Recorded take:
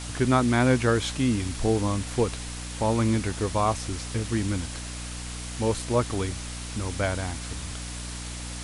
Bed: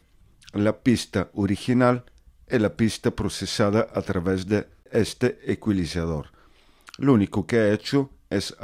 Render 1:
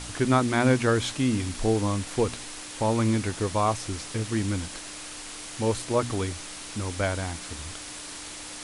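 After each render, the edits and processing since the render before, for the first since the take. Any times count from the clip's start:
hum removal 60 Hz, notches 4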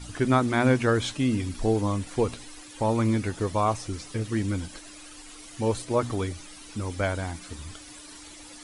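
broadband denoise 12 dB, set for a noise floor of −40 dBFS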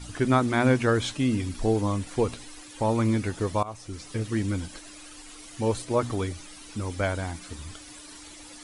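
0:03.63–0:04.15: fade in, from −19 dB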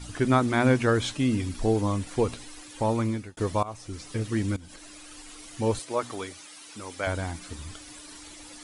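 0:02.72–0:03.37: fade out equal-power
0:04.56–0:05.09: downward compressor 16 to 1, threshold −41 dBFS
0:05.79–0:07.07: high-pass filter 620 Hz 6 dB per octave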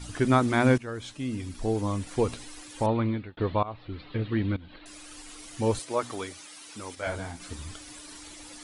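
0:00.78–0:02.36: fade in, from −16.5 dB
0:02.86–0:04.86: Butterworth low-pass 4,200 Hz 72 dB per octave
0:06.95–0:07.40: micro pitch shift up and down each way 35 cents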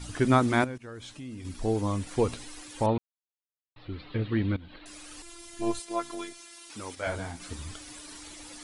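0:00.64–0:01.45: downward compressor 2.5 to 1, threshold −41 dBFS
0:02.98–0:03.76: silence
0:05.22–0:06.70: phases set to zero 342 Hz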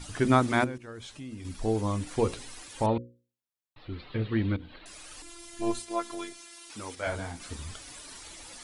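mains-hum notches 60/120/180/240/300/360/420/480/540 Hz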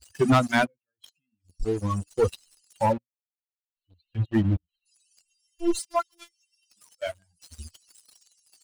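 spectral dynamics exaggerated over time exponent 3
leveller curve on the samples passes 3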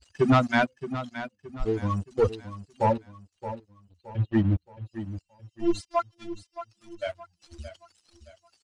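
high-frequency loss of the air 110 metres
repeating echo 621 ms, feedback 38%, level −12.5 dB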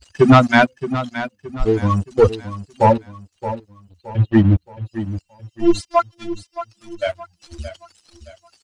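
level +10 dB

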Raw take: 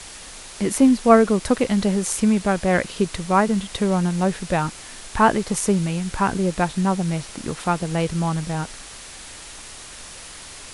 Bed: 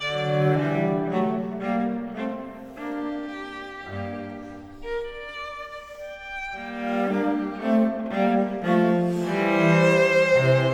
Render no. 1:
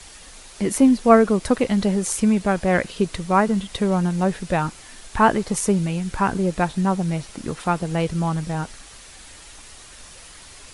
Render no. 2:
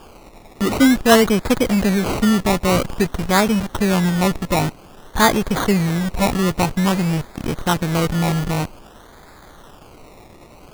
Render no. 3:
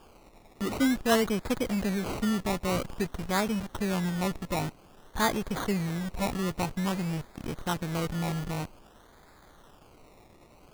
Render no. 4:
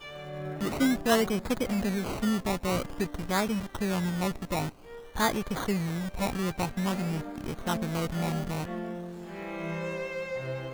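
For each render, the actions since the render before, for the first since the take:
broadband denoise 6 dB, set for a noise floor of −39 dBFS
in parallel at −4 dB: comparator with hysteresis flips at −27.5 dBFS; on the sum: sample-and-hold swept by an LFO 22×, swing 60% 0.51 Hz
level −12 dB
mix in bed −16 dB

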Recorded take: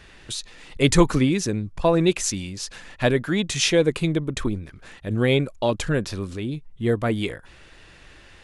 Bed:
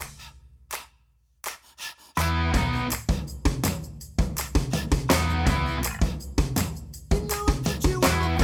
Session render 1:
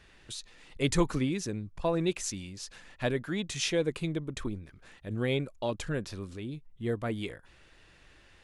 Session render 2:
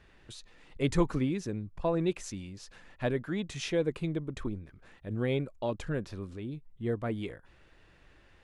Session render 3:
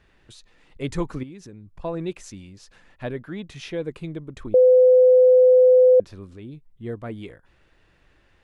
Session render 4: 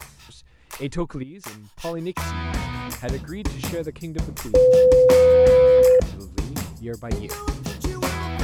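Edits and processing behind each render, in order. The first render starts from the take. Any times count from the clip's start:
level −10 dB
high-shelf EQ 2,700 Hz −10 dB
0:01.23–0:01.77: downward compressor 2.5 to 1, threshold −41 dBFS; 0:03.03–0:03.82: parametric band 7,400 Hz −7 dB; 0:04.54–0:06.00: beep over 507 Hz −10 dBFS
mix in bed −4 dB

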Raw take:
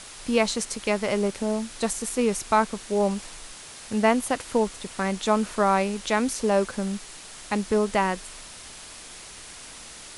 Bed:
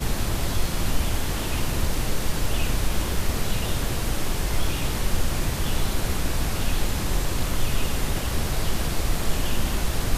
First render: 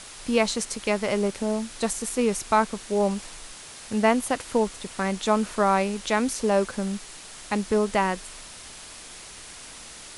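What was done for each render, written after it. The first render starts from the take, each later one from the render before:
no processing that can be heard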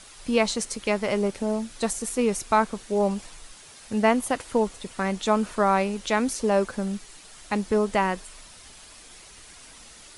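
broadband denoise 7 dB, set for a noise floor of −43 dBFS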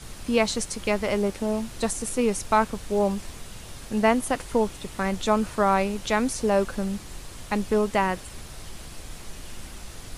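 mix in bed −16.5 dB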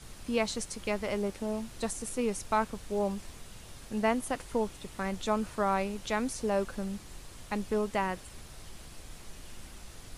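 level −7.5 dB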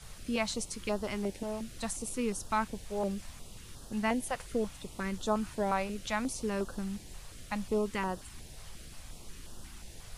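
notch on a step sequencer 5.6 Hz 290–2,200 Hz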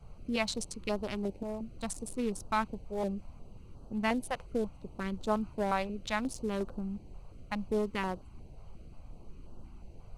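adaptive Wiener filter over 25 samples
dynamic equaliser 3,800 Hz, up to +4 dB, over −50 dBFS, Q 0.97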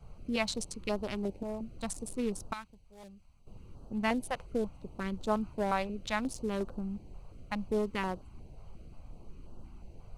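0:02.53–0:03.47: guitar amp tone stack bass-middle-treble 5-5-5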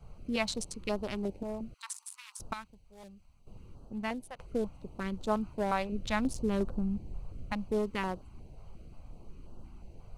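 0:01.74–0:02.40: Butterworth high-pass 920 Hz 72 dB per octave
0:03.65–0:04.39: fade out linear, to −13 dB
0:05.92–0:07.53: low-shelf EQ 250 Hz +8 dB

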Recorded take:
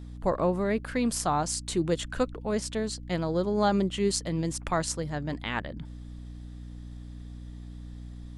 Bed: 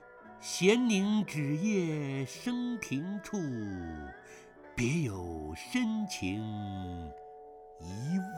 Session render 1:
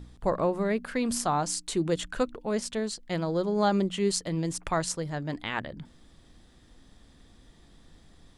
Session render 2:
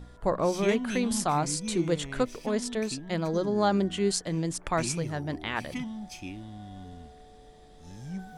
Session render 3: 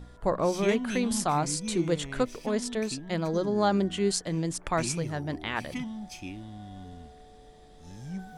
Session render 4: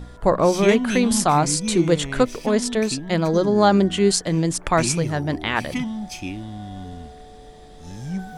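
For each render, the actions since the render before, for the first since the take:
hum removal 60 Hz, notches 5
mix in bed −5 dB
no processing that can be heard
level +9 dB; brickwall limiter −3 dBFS, peak gain reduction 1.5 dB

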